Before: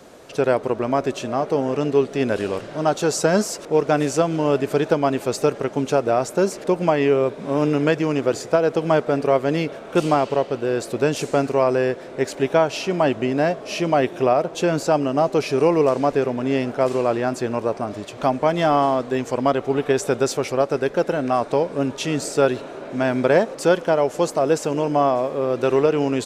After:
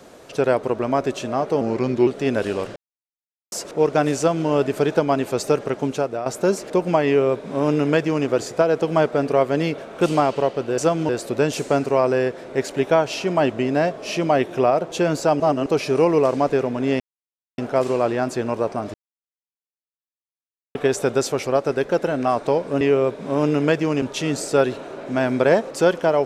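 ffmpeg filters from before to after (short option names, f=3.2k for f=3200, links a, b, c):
-filter_complex "[0:a]asplit=15[a][b][c][d][e][f][g][h][i][j][k][l][m][n][o];[a]atrim=end=1.614[p];[b]atrim=start=1.61:end=2.01,asetpts=PTS-STARTPTS,asetrate=38367,aresample=44100[q];[c]atrim=start=2.006:end=2.7,asetpts=PTS-STARTPTS,afade=t=out:st=0.69:d=0.004:c=hsin[r];[d]atrim=start=2.7:end=3.46,asetpts=PTS-STARTPTS,volume=0[s];[e]atrim=start=3.46:end=6.2,asetpts=PTS-STARTPTS,afade=t=in:d=0.004:c=hsin,afade=t=out:st=2.28:d=0.46:silence=0.281838[t];[f]atrim=start=6.2:end=10.722,asetpts=PTS-STARTPTS,afade=t=in:d=0.004:c=hsin:silence=0.281838[u];[g]atrim=start=4.108:end=4.422[v];[h]atrim=start=10.718:end=15.032[w];[i]atrim=start=15.028:end=15.292,asetpts=PTS-STARTPTS,areverse[x];[j]atrim=start=15.288:end=16.63,asetpts=PTS-STARTPTS,afade=t=out:st=1.338:d=0.004:c=hsin,apad=pad_dur=0.58[y];[k]atrim=start=16.63:end=17.99,asetpts=PTS-STARTPTS,afade=t=in:d=0.004:c=hsin,afade=t=out:st=1.356:d=0.004:c=hsin[z];[l]atrim=start=17.99:end=19.8,asetpts=PTS-STARTPTS,volume=0[aa];[m]atrim=start=19.8:end=21.862,asetpts=PTS-STARTPTS,afade=t=in:d=0.004:c=hsin[ab];[n]atrim=start=6.998:end=8.212[ac];[o]atrim=start=21.858[ad];[p][q]acrossfade=d=0.004:c1=hsin:c2=hsin[ae];[r][s][t][u]concat=n=4:v=0:a=1[af];[ae][af]acrossfade=d=0.004:c1=hsin:c2=hsin[ag];[ag][v]acrossfade=d=0.004:c1=hsin:c2=hsin[ah];[ah][w]acrossfade=d=0.004:c1=hsin:c2=hsin[ai];[ai][x]acrossfade=d=0.004:c1=hsin:c2=hsin[aj];[y][z][aa][ab]concat=n=4:v=0:a=1[ak];[aj][ak]acrossfade=d=0.004:c1=hsin:c2=hsin[al];[al][ac]acrossfade=d=0.004:c1=hsin:c2=hsin[am];[am][ad]acrossfade=d=0.004:c1=hsin:c2=hsin"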